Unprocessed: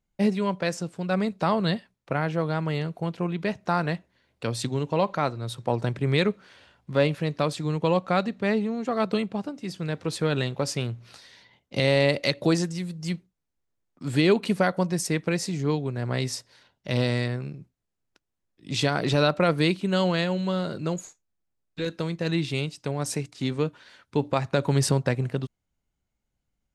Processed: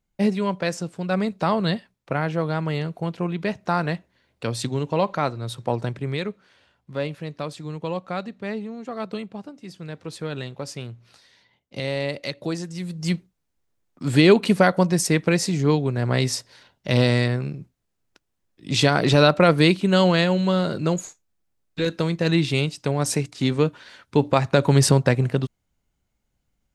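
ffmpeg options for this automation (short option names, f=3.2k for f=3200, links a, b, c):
-af "volume=13.5dB,afade=t=out:st=5.64:d=0.56:silence=0.421697,afade=t=in:st=12.65:d=0.44:silence=0.266073"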